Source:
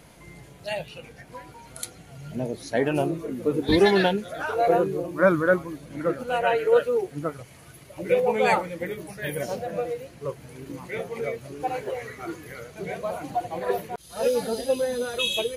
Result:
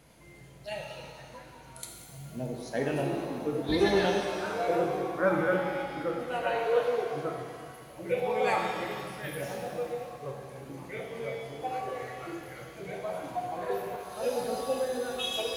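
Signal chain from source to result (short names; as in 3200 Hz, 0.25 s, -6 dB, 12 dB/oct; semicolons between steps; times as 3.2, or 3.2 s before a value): shimmer reverb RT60 1.9 s, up +7 st, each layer -8 dB, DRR 1 dB; gain -8.5 dB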